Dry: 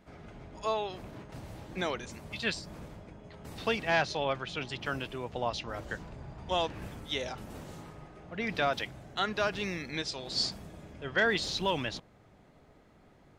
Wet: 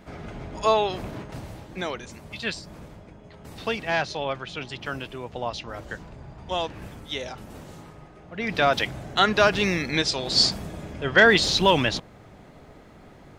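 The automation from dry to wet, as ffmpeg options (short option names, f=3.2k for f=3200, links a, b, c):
-af "volume=20dB,afade=t=out:st=1.05:d=0.63:silence=0.375837,afade=t=in:st=8.33:d=0.6:silence=0.354813"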